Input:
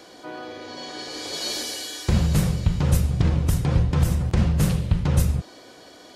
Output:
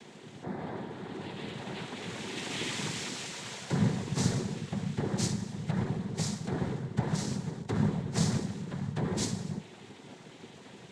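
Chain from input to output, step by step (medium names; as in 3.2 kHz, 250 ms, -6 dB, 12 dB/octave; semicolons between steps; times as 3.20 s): static phaser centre 590 Hz, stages 8; wide varispeed 0.564×; dynamic bell 3.3 kHz, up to -5 dB, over -49 dBFS, Q 1.3; noise-vocoded speech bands 6; on a send: reverberation, pre-delay 4 ms, DRR 11 dB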